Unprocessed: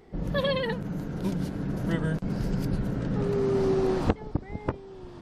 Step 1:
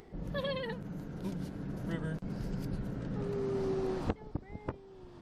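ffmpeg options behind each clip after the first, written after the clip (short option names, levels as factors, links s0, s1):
-af "acompressor=mode=upward:threshold=0.0126:ratio=2.5,volume=0.355"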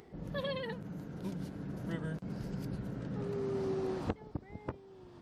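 -af "highpass=61,volume=0.841"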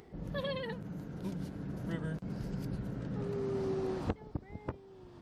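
-af "lowshelf=f=71:g=6"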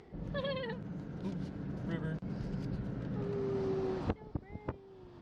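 -af "lowpass=5300"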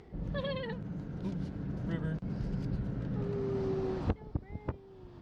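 -af "lowshelf=f=120:g=8"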